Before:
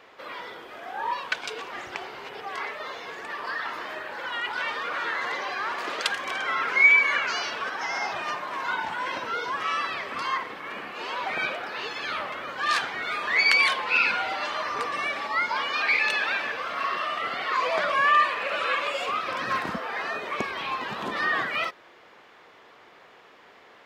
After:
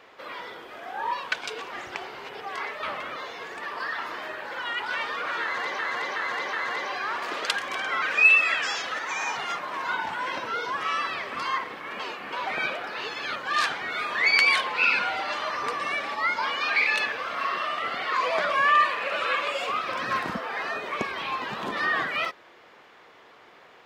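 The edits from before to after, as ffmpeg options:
-filter_complex "[0:a]asplit=12[a][b][c][d][e][f][g][h][i][j][k][l];[a]atrim=end=2.832[m];[b]atrim=start=12.148:end=12.482[n];[c]atrim=start=2.828:end=5.462[o];[d]atrim=start=5.088:end=5.462[p];[e]atrim=start=5.088:end=5.462[q];[f]atrim=start=5.088:end=6.584[r];[g]atrim=start=6.58:end=8.38,asetpts=PTS-STARTPTS,asetrate=50715,aresample=44100,atrim=end_sample=69026,asetpts=PTS-STARTPTS[s];[h]atrim=start=8.376:end=10.792[t];[i]atrim=start=10.788:end=11.122,asetpts=PTS-STARTPTS,areverse[u];[j]atrim=start=11.118:end=12.152[v];[k]atrim=start=12.478:end=16.182[w];[l]atrim=start=16.448[x];[m][n]acrossfade=d=0.004:c1=hsin:c2=hsin[y];[y][o]acrossfade=d=0.004:c1=hsin:c2=hsin[z];[z][p]acrossfade=d=0.004:c1=hsin:c2=hsin[aa];[aa][q]acrossfade=d=0.004:c1=hsin:c2=hsin[ab];[ab][r]acrossfade=d=0.004:c1=hsin:c2=hsin[ac];[ac][s]acrossfade=d=0.004:c1=hsin:c2=hsin[ad];[ad][t]acrossfade=d=0.004:c1=hsin:c2=hsin[ae];[ae][u]acrossfade=d=0.004:c1=hsin:c2=hsin[af];[af][v]acrossfade=d=0.004:c1=hsin:c2=hsin[ag];[ag][w]acrossfade=d=0.004:c1=hsin:c2=hsin[ah];[ah][x]acrossfade=d=0.004:c1=hsin:c2=hsin"

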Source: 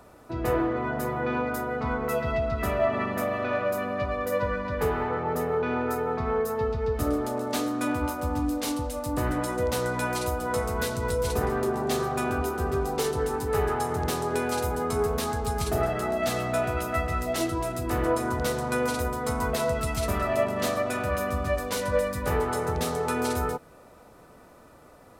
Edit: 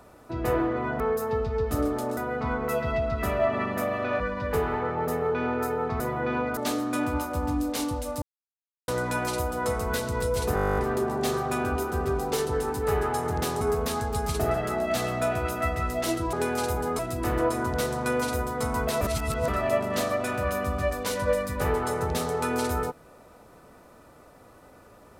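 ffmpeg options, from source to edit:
-filter_complex "[0:a]asplit=24[a][b][c][d][e][f][g][h][i][j][k][l][m][n][o][p][q][r][s][t][u][v][w][x];[a]atrim=end=1.002[y];[b]atrim=start=6.278:end=7.452[z];[c]atrim=start=1.568:end=3.602[aa];[d]atrim=start=4.478:end=6.282[ab];[e]atrim=start=0.998:end=1.572[ac];[f]atrim=start=7.448:end=9.1,asetpts=PTS-STARTPTS,afade=t=out:st=1.648:d=0.004:c=hsin[ad];[g]atrim=start=9.1:end=9.76,asetpts=PTS-STARTPTS,volume=0[ae];[h]atrim=start=9.76:end=11.452,asetpts=PTS-STARTPTS,afade=t=in:d=0.004:c=hsin[af];[i]atrim=start=11.428:end=11.452[ag];[j]atrim=start=11.428:end=11.452[ah];[k]atrim=start=11.428:end=11.452[ai];[l]atrim=start=11.428:end=11.452[aj];[m]atrim=start=11.428:end=11.452[ak];[n]atrim=start=11.428:end=11.452[al];[o]atrim=start=11.428:end=11.452[am];[p]atrim=start=11.428:end=11.452[an];[q]atrim=start=11.428:end=11.452[ao];[r]atrim=start=11.428:end=11.452[ap];[s]atrim=start=11.428:end=14.272[aq];[t]atrim=start=14.928:end=17.652[ar];[u]atrim=start=14.268:end=14.932[as];[v]atrim=start=17.648:end=19.672[at];[w]atrim=start=19.668:end=20.142,asetpts=PTS-STARTPTS,areverse[au];[x]atrim=start=20.138[av];[y][z]acrossfade=d=0.004:c1=hsin:c2=hsin[aw];[aw][aa]acrossfade=d=0.004:c1=hsin:c2=hsin[ax];[ax][ab]acrossfade=d=0.004:c1=hsin:c2=hsin[ay];[ay][ac]acrossfade=d=0.004:c1=hsin:c2=hsin[az];[ad][ae][af]concat=n=3:v=0:a=1[ba];[az][ba]acrossfade=d=0.004:c1=hsin:c2=hsin[bb];[bb][ag]acrossfade=d=0.004:c1=hsin:c2=hsin[bc];[bc][ah]acrossfade=d=0.004:c1=hsin:c2=hsin[bd];[bd][ai]acrossfade=d=0.004:c1=hsin:c2=hsin[be];[be][aj]acrossfade=d=0.004:c1=hsin:c2=hsin[bf];[bf][ak]acrossfade=d=0.004:c1=hsin:c2=hsin[bg];[bg][al]acrossfade=d=0.004:c1=hsin:c2=hsin[bh];[bh][am]acrossfade=d=0.004:c1=hsin:c2=hsin[bi];[bi][an]acrossfade=d=0.004:c1=hsin:c2=hsin[bj];[bj][ao]acrossfade=d=0.004:c1=hsin:c2=hsin[bk];[bk][ap]acrossfade=d=0.004:c1=hsin:c2=hsin[bl];[bl][aq]acrossfade=d=0.004:c1=hsin:c2=hsin[bm];[bm][ar]acrossfade=d=0.004:c1=hsin:c2=hsin[bn];[bn][as]acrossfade=d=0.004:c1=hsin:c2=hsin[bo];[bo][at]acrossfade=d=0.004:c1=hsin:c2=hsin[bp];[bp][au]acrossfade=d=0.004:c1=hsin:c2=hsin[bq];[bq][av]acrossfade=d=0.004:c1=hsin:c2=hsin"

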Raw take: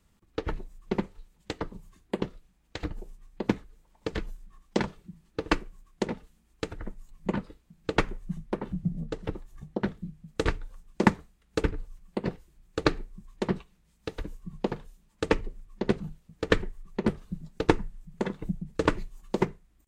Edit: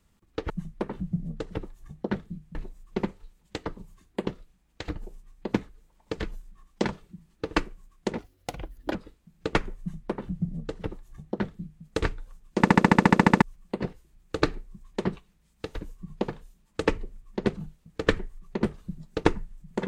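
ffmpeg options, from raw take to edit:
-filter_complex "[0:a]asplit=17[a][b][c][d][e][f][g][h][i][j][k][l][m][n][o][p][q];[a]atrim=end=0.502[r];[b]atrim=start=8.218:end=10.272[s];[c]atrim=start=0.498:end=6.134[t];[d]atrim=start=6.13:end=7.38,asetpts=PTS-STARTPTS,asetrate=71883,aresample=44100,atrim=end_sample=33819,asetpts=PTS-STARTPTS[u];[e]atrim=start=7.376:end=11.082[v];[f]atrim=start=11.008:end=11.082[w];[g]atrim=start=11.008:end=11.082[x];[h]atrim=start=11.008:end=11.082[y];[i]atrim=start=11.008:end=11.082[z];[j]atrim=start=11.008:end=11.082[aa];[k]atrim=start=11.008:end=11.082[ab];[l]atrim=start=11.008:end=11.082[ac];[m]atrim=start=11.008:end=11.082[ad];[n]atrim=start=11.008:end=11.082[ae];[o]atrim=start=11.008:end=11.082[af];[p]atrim=start=11.008:end=11.082[ag];[q]atrim=start=11.848[ah];[r][s]acrossfade=d=0.004:c1=hsin:c2=hsin[ai];[ai][t]acrossfade=d=0.004:c1=hsin:c2=hsin[aj];[aj][u]acrossfade=d=0.004:c1=hsin:c2=hsin[ak];[ak][v]acrossfade=d=0.004:c1=hsin:c2=hsin[al];[al][w]acrossfade=d=0.004:c1=hsin:c2=hsin[am];[am][x]acrossfade=d=0.004:c1=hsin:c2=hsin[an];[an][y]acrossfade=d=0.004:c1=hsin:c2=hsin[ao];[ao][z]acrossfade=d=0.004:c1=hsin:c2=hsin[ap];[ap][aa]acrossfade=d=0.004:c1=hsin:c2=hsin[aq];[aq][ab]acrossfade=d=0.004:c1=hsin:c2=hsin[ar];[ar][ac]acrossfade=d=0.004:c1=hsin:c2=hsin[as];[as][ad]acrossfade=d=0.004:c1=hsin:c2=hsin[at];[at][ae]acrossfade=d=0.004:c1=hsin:c2=hsin[au];[au][af]acrossfade=d=0.004:c1=hsin:c2=hsin[av];[av][ag]acrossfade=d=0.004:c1=hsin:c2=hsin[aw];[aw][ah]acrossfade=d=0.004:c1=hsin:c2=hsin"

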